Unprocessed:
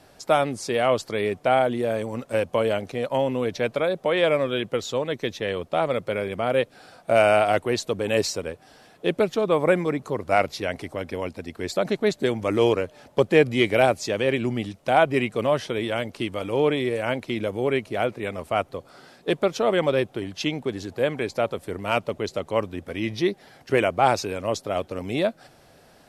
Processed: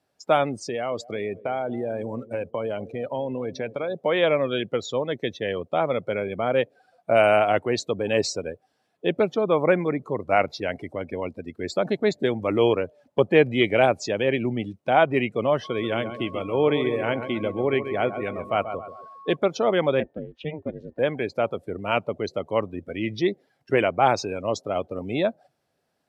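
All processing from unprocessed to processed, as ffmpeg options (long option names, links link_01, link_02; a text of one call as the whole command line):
ffmpeg -i in.wav -filter_complex "[0:a]asettb=1/sr,asplit=3[link_01][link_02][link_03];[link_01]atrim=end=0.604[link_04];[link_02]atrim=start=0.6:end=3.96,asetpts=PTS-STARTPTS,afade=type=in:duration=0.004:curve=qsin,afade=type=out:start_time=3.356:duration=0.004:curve=qsin,agate=range=-33dB:threshold=-39dB:ratio=3:release=100:detection=peak,acompressor=threshold=-25dB:ratio=3:attack=3.2:release=140:knee=1:detection=peak,asplit=2[link_05][link_06];[link_06]adelay=232,lowpass=frequency=1300:poles=1,volume=-16dB,asplit=2[link_07][link_08];[link_08]adelay=232,lowpass=frequency=1300:poles=1,volume=0.49,asplit=2[link_09][link_10];[link_10]adelay=232,lowpass=frequency=1300:poles=1,volume=0.49,asplit=2[link_11][link_12];[link_12]adelay=232,lowpass=frequency=1300:poles=1,volume=0.49[link_13];[link_05][link_07][link_09][link_11][link_13]amix=inputs=5:normalize=0,atrim=end_sample=148176[link_14];[link_03]atrim=start=3.956[link_15];[link_04][link_14]acrossfade=duration=0.004:curve1=hsin:curve2=qsin[link_16];[link_16][link_15]acrossfade=duration=0.004:curve1=qsin:curve2=hsin,asettb=1/sr,asplit=3[link_17][link_18][link_19];[link_17]atrim=end=15.644[link_20];[link_18]atrim=start=15.64:end=19.36,asetpts=PTS-STARTPTS,afade=type=in:duration=0.004:curve=qsin,afade=type=out:start_time=3.716:duration=0.004:curve=qsin,aeval=exprs='val(0)+0.0112*sin(2*PI*1100*n/s)':channel_layout=same,aecho=1:1:135|270|405|540|675:0.335|0.157|0.074|0.0348|0.0163,atrim=end_sample=164052[link_21];[link_19]atrim=start=19.356[link_22];[link_20][link_21]acrossfade=duration=0.004:curve1=hsin:curve2=qsin[link_23];[link_23][link_22]acrossfade=duration=0.004:curve1=qsin:curve2=hsin,asettb=1/sr,asplit=3[link_24][link_25][link_26];[link_24]atrim=end=20.004[link_27];[link_25]atrim=start=20:end=20.99,asetpts=PTS-STARTPTS,afade=type=in:duration=0.004:curve=qsin,afade=type=out:start_time=0.986:duration=0.004:curve=qsin,bass=frequency=250:gain=-3,treble=frequency=4000:gain=-14,aeval=exprs='val(0)*sin(2*PI*150*n/s)':channel_layout=same,aeval=exprs='val(0)+0.000708*sin(2*PI*1800*n/s)':channel_layout=same[link_28];[link_26]atrim=start=20.986[link_29];[link_27][link_28]acrossfade=duration=0.004:curve1=hsin:curve2=qsin[link_30];[link_30][link_29]acrossfade=duration=0.004:curve1=qsin:curve2=hsin,afftdn=noise_reduction=21:noise_floor=-36,highpass=85" out.wav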